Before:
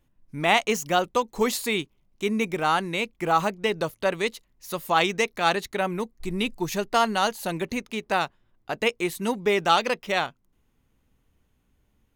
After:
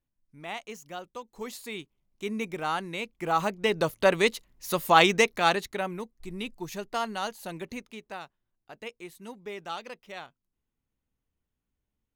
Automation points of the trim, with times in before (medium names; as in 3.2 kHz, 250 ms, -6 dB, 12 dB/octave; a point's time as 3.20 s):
1.15 s -17 dB
2.31 s -7 dB
3.08 s -7 dB
4.02 s +3 dB
5.17 s +3 dB
6.12 s -9 dB
7.80 s -9 dB
8.20 s -16.5 dB